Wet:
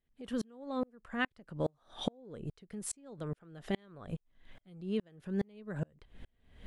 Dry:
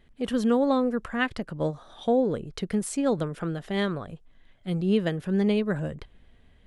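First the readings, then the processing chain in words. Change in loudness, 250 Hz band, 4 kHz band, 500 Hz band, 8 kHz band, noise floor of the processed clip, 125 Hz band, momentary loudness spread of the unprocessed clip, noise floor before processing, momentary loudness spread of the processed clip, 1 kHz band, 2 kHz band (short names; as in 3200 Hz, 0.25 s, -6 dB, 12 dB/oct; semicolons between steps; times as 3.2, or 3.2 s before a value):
-12.5 dB, -13.0 dB, -9.0 dB, -14.0 dB, -5.5 dB, -77 dBFS, -10.5 dB, 9 LU, -57 dBFS, 9 LU, -12.5 dB, -9.0 dB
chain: compressor 3:1, threshold -41 dBFS, peak gain reduction 16.5 dB; dB-ramp tremolo swelling 2.4 Hz, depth 37 dB; gain +9.5 dB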